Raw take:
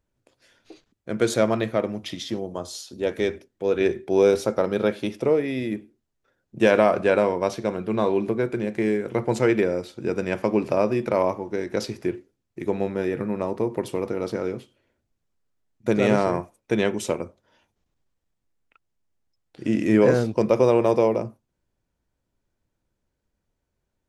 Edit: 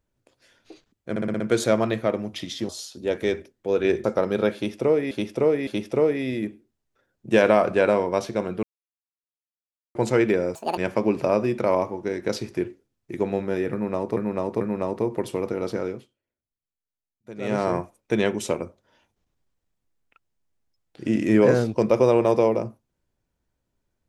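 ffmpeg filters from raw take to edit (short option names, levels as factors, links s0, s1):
-filter_complex "[0:a]asplit=18[s0][s1][s2][s3][s4][s5][s6][s7][s8][s9][s10][s11][s12][s13][s14][s15][s16][s17];[s0]atrim=end=1.162[s18];[s1]atrim=start=1.098:end=1.162[s19];[s2]atrim=start=1.098:end=1.162[s20];[s3]atrim=start=1.098:end=1.162[s21];[s4]atrim=start=1.098:end=1.162[s22];[s5]atrim=start=1.098:end=2.392[s23];[s6]atrim=start=2.648:end=4.002[s24];[s7]atrim=start=4.448:end=5.522[s25];[s8]atrim=start=4.958:end=5.522[s26];[s9]atrim=start=4.958:end=7.92,asetpts=PTS-STARTPTS,afade=t=out:st=2.958:d=0.004:c=hsin[s27];[s10]atrim=start=7.92:end=9.24,asetpts=PTS-STARTPTS,volume=0[s28];[s11]atrim=start=9.24:end=9.844,asetpts=PTS-STARTPTS,afade=t=in:d=0.004:c=hsin[s29];[s12]atrim=start=9.84:end=10.25,asetpts=PTS-STARTPTS,asetrate=80703,aresample=44100,atrim=end_sample=9880,asetpts=PTS-STARTPTS[s30];[s13]atrim=start=10.246:end=13.642[s31];[s14]atrim=start=13.198:end=13.642[s32];[s15]atrim=start=13.198:end=14.77,asetpts=PTS-STARTPTS,afade=t=out:st=1.202:d=0.37:silence=0.11885[s33];[s16]atrim=start=14.77:end=15.95,asetpts=PTS-STARTPTS,volume=0.119[s34];[s17]atrim=start=15.95,asetpts=PTS-STARTPTS,afade=t=in:d=0.37:silence=0.11885[s35];[s18][s19]acrossfade=d=0.004:c1=hsin:c2=hsin[s36];[s36][s20]acrossfade=d=0.004:c1=hsin:c2=hsin[s37];[s37][s21]acrossfade=d=0.004:c1=hsin:c2=hsin[s38];[s38][s22]acrossfade=d=0.004:c1=hsin:c2=hsin[s39];[s39][s23]acrossfade=d=0.004:c1=hsin:c2=hsin[s40];[s40][s24]acrossfade=d=0.004:c1=hsin:c2=hsin[s41];[s41][s25]acrossfade=d=0.004:c1=hsin:c2=hsin[s42];[s42][s26]acrossfade=d=0.004:c1=hsin:c2=hsin[s43];[s27][s28][s29]concat=n=3:v=0:a=1[s44];[s43][s44]acrossfade=d=0.004:c1=hsin:c2=hsin[s45];[s45][s30]acrossfade=d=0.004:c1=hsin:c2=hsin[s46];[s46][s31]acrossfade=d=0.004:c1=hsin:c2=hsin[s47];[s47][s32]acrossfade=d=0.004:c1=hsin:c2=hsin[s48];[s33][s34][s35]concat=n=3:v=0:a=1[s49];[s48][s49]acrossfade=d=0.004:c1=hsin:c2=hsin"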